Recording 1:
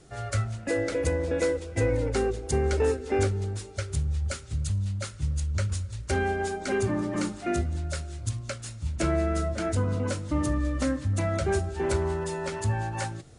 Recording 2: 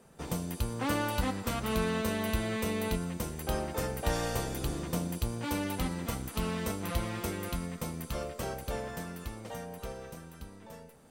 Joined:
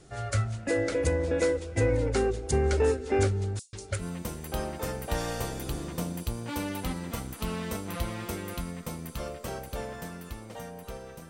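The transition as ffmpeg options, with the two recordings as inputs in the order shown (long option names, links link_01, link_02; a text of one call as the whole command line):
ffmpeg -i cue0.wav -i cue1.wav -filter_complex "[0:a]asettb=1/sr,asplit=3[link_01][link_02][link_03];[link_01]atrim=end=3.594[link_04];[link_02]atrim=start=3.59:end=4.04,asetpts=PTS-STARTPTS,afade=type=in:duration=0.004:curve=qsin,afade=type=out:start_time=0.446:duration=0.004:curve=qsin,acrossover=split=4800[link_05][link_06];[link_05]adelay=140[link_07];[link_07][link_06]amix=inputs=2:normalize=0,atrim=end_sample=19845[link_08];[link_03]atrim=start=4.036[link_09];[link_04][link_08]acrossfade=duration=0.004:curve1=hsin:curve2=qsin[link_10];[link_10][link_09]acrossfade=duration=0.004:curve1=qsin:curve2=hsin,apad=whole_dur=11.29,atrim=end=11.29,atrim=end=4.04,asetpts=PTS-STARTPTS[link_11];[1:a]atrim=start=2.93:end=10.24,asetpts=PTS-STARTPTS[link_12];[link_11][link_12]acrossfade=duration=0.06:curve1=tri:curve2=tri" out.wav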